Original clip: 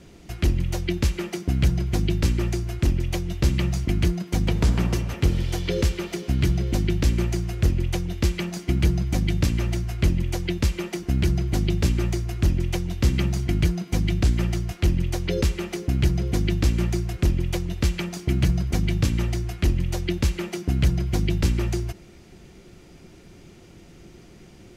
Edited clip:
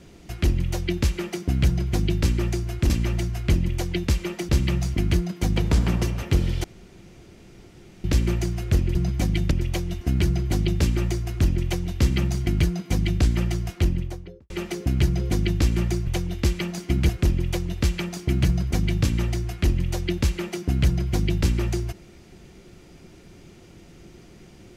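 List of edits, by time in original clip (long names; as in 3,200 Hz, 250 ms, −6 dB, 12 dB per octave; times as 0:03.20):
0:02.90–0:03.40: swap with 0:09.44–0:11.03
0:05.55–0:06.95: fill with room tone
0:07.86–0:08.88: move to 0:17.09
0:14.73–0:15.52: fade out and dull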